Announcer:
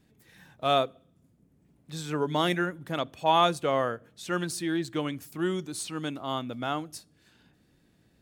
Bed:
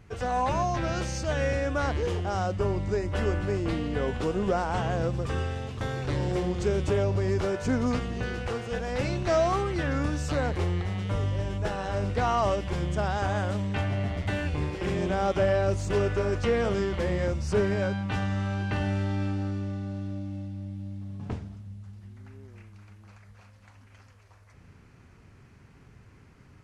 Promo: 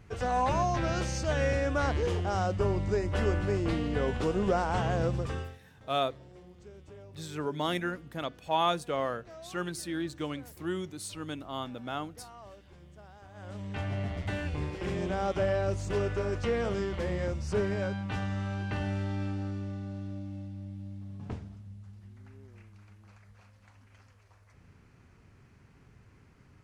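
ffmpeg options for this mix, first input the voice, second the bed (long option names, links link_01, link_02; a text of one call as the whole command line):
ffmpeg -i stem1.wav -i stem2.wav -filter_complex "[0:a]adelay=5250,volume=-5dB[link_01];[1:a]volume=19dB,afade=type=out:start_time=5.15:duration=0.44:silence=0.0668344,afade=type=in:start_time=13.33:duration=0.61:silence=0.1[link_02];[link_01][link_02]amix=inputs=2:normalize=0" out.wav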